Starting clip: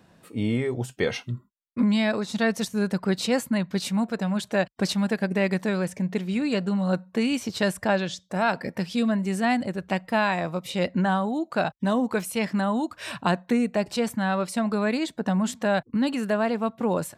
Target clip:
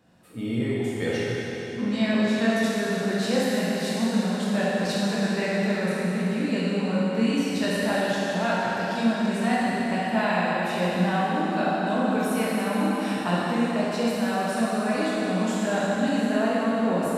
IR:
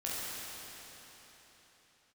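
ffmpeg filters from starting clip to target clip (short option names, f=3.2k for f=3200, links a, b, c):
-filter_complex "[1:a]atrim=start_sample=2205[a];[0:a][a]afir=irnorm=-1:irlink=0,volume=-4dB"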